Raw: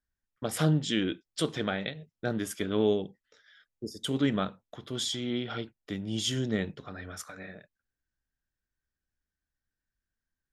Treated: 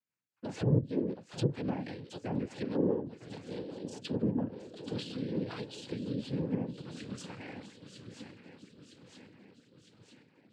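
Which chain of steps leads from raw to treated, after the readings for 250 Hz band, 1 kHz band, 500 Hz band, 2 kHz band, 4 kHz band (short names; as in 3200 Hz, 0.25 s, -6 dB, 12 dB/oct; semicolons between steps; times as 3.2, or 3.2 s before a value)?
-2.5 dB, -6.5 dB, -4.0 dB, -11.0 dB, -12.5 dB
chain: swung echo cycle 0.958 s, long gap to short 3:1, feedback 55%, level -14.5 dB; treble ducked by the level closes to 530 Hz, closed at -23.5 dBFS; dynamic EQ 1300 Hz, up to -5 dB, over -48 dBFS, Q 0.74; noise vocoder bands 8; rotary speaker horn 5 Hz, later 1.1 Hz, at 4.25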